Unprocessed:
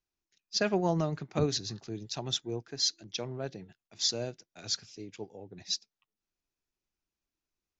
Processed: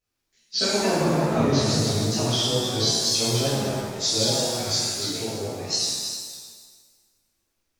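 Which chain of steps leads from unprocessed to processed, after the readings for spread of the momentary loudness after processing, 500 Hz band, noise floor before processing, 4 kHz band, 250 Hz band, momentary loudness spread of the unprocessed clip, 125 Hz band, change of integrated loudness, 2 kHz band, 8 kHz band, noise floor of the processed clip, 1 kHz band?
9 LU, +9.5 dB, below −85 dBFS, +11.0 dB, +10.5 dB, 16 LU, +11.0 dB, +10.0 dB, +9.5 dB, can't be measured, −77 dBFS, +10.5 dB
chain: feedback delay that plays each chunk backwards 148 ms, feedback 47%, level −4 dB
downward compressor, threshold −29 dBFS, peak gain reduction 8.5 dB
tape wow and flutter 120 cents
reverb with rising layers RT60 1.3 s, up +7 semitones, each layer −8 dB, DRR −11.5 dB

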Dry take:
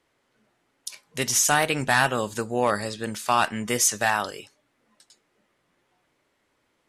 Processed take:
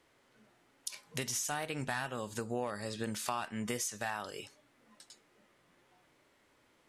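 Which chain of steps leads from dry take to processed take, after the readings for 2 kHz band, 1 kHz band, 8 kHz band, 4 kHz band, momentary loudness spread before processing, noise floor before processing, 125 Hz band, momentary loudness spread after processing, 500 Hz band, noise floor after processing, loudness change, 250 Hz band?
−15.5 dB, −15.5 dB, −14.5 dB, −13.0 dB, 16 LU, −72 dBFS, −10.0 dB, 13 LU, −12.5 dB, −70 dBFS, −14.5 dB, −10.0 dB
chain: downward compressor 10 to 1, threshold −35 dBFS, peak gain reduction 19.5 dB
harmonic and percussive parts rebalanced percussive −4 dB
level +3.5 dB

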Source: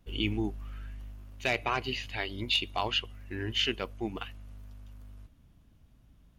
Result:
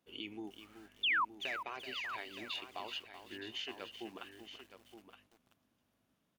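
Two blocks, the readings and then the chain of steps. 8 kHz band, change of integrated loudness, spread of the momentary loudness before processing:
−10.5 dB, −8.0 dB, 21 LU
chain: high-pass filter 280 Hz 12 dB per octave
downward compressor 2.5 to 1, threshold −34 dBFS, peak gain reduction 7.5 dB
sound drawn into the spectrogram fall, 0:01.03–0:01.25, 900–3,700 Hz −23 dBFS
on a send: single-tap delay 919 ms −10.5 dB
on the sum: feedback echo at a low word length 381 ms, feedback 35%, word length 8 bits, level −9.5 dB
level −8 dB

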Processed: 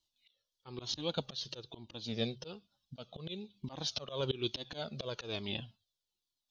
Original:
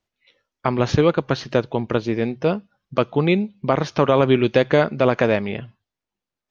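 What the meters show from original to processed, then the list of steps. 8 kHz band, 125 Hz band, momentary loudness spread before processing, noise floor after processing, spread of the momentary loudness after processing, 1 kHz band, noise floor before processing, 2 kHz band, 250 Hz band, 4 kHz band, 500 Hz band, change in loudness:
can't be measured, −20.0 dB, 8 LU, below −85 dBFS, 14 LU, −25.0 dB, below −85 dBFS, −22.5 dB, −22.0 dB, −5.5 dB, −23.0 dB, −19.5 dB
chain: high shelf with overshoot 2,700 Hz +10.5 dB, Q 3
volume swells 309 ms
flanger whose copies keep moving one way falling 1.1 Hz
level −6.5 dB

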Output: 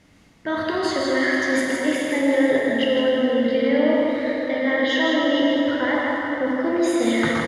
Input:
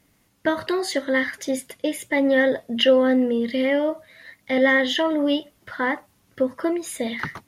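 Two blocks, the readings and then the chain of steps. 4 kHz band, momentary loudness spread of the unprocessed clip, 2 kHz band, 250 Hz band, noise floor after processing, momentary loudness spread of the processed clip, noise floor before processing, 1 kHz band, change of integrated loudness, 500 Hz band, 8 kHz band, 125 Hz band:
0.0 dB, 11 LU, +2.0 dB, +3.0 dB, −53 dBFS, 5 LU, −63 dBFS, +3.0 dB, +1.5 dB, +1.5 dB, +0.5 dB, can't be measured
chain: low-pass filter 5,900 Hz 12 dB per octave
reversed playback
downward compressor, threshold −30 dBFS, peak gain reduction 17 dB
reversed playback
single-tap delay 161 ms −5 dB
dense smooth reverb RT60 4.9 s, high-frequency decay 0.6×, DRR −3.5 dB
level +6.5 dB

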